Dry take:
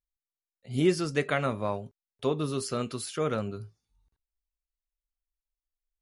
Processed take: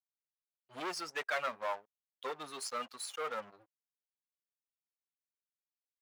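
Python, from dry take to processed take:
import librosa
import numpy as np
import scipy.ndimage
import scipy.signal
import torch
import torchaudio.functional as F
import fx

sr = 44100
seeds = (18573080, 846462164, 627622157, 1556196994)

y = fx.bin_expand(x, sr, power=2.0)
y = fx.leveller(y, sr, passes=5)
y = scipy.signal.sosfilt(scipy.signal.butter(2, 900.0, 'highpass', fs=sr, output='sos'), y)
y = fx.high_shelf(y, sr, hz=2700.0, db=-11.0)
y = y * librosa.db_to_amplitude(-9.0)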